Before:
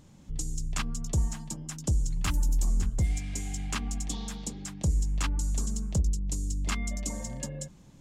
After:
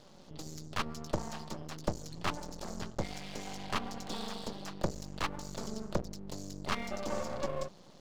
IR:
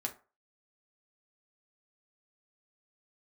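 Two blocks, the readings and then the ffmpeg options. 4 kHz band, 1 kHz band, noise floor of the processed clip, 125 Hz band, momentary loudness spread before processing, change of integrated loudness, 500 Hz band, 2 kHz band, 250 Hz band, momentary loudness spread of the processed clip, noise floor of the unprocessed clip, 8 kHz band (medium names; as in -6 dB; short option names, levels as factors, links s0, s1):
-1.0 dB, +4.5 dB, -55 dBFS, -12.0 dB, 9 LU, -7.5 dB, +7.0 dB, -1.0 dB, -3.5 dB, 7 LU, -53 dBFS, -12.0 dB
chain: -filter_complex "[0:a]highpass=270,equalizer=f=280:t=q:w=4:g=-7,equalizer=f=580:t=q:w=4:g=7,equalizer=f=1600:t=q:w=4:g=-5,equalizer=f=2300:t=q:w=4:g=-9,equalizer=f=4500:t=q:w=4:g=6,lowpass=f=5500:w=0.5412,lowpass=f=5500:w=1.3066,acrossover=split=3000[s0][s1];[s1]acompressor=threshold=0.00251:ratio=4:attack=1:release=60[s2];[s0][s2]amix=inputs=2:normalize=0,aeval=exprs='max(val(0),0)':c=same,volume=2.82"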